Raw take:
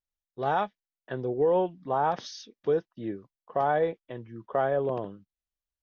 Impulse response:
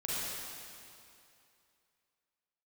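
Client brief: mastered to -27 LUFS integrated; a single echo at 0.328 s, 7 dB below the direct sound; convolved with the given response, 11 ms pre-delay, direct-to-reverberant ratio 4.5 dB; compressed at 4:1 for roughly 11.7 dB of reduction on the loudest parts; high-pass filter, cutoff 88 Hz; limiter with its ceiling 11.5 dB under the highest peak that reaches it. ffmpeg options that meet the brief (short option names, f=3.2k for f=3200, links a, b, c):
-filter_complex "[0:a]highpass=88,acompressor=threshold=-35dB:ratio=4,alimiter=level_in=8.5dB:limit=-24dB:level=0:latency=1,volume=-8.5dB,aecho=1:1:328:0.447,asplit=2[a][b];[1:a]atrim=start_sample=2205,adelay=11[c];[b][c]afir=irnorm=-1:irlink=0,volume=-10dB[d];[a][d]amix=inputs=2:normalize=0,volume=14.5dB"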